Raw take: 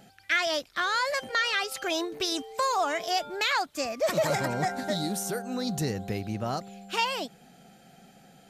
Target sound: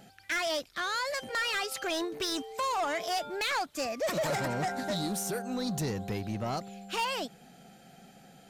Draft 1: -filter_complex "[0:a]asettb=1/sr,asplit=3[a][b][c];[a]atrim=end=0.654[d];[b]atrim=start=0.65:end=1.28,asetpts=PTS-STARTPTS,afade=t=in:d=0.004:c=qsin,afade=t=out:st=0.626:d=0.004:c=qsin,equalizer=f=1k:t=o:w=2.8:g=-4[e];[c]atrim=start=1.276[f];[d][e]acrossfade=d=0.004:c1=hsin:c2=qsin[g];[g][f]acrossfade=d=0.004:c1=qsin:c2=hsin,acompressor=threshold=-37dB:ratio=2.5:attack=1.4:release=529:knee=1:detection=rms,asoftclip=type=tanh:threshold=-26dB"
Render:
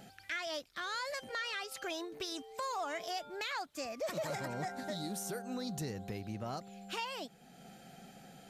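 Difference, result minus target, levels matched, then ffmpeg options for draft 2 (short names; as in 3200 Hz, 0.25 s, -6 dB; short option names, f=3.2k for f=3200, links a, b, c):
compressor: peak gain reduction +13 dB
-filter_complex "[0:a]asettb=1/sr,asplit=3[a][b][c];[a]atrim=end=0.654[d];[b]atrim=start=0.65:end=1.28,asetpts=PTS-STARTPTS,afade=t=in:d=0.004:c=qsin,afade=t=out:st=0.626:d=0.004:c=qsin,equalizer=f=1k:t=o:w=2.8:g=-4[e];[c]atrim=start=1.276[f];[d][e]acrossfade=d=0.004:c1=hsin:c2=qsin[g];[g][f]acrossfade=d=0.004:c1=qsin:c2=hsin,asoftclip=type=tanh:threshold=-26dB"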